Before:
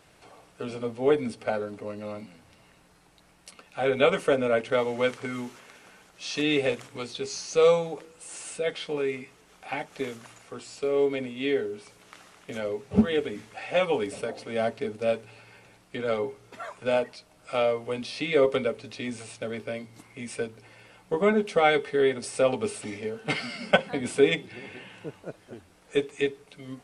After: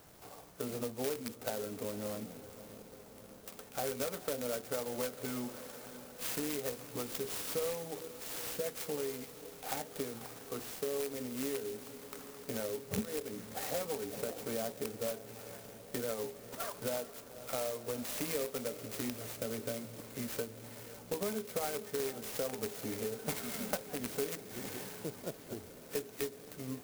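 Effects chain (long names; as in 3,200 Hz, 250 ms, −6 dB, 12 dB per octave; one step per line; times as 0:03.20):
loose part that buzzes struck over −31 dBFS, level −16 dBFS
downward compressor 6 to 1, threshold −35 dBFS, peak gain reduction 20 dB
on a send: feedback delay with all-pass diffusion 504 ms, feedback 75%, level −15 dB
on the sum: converter with an unsteady clock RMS 0.11 ms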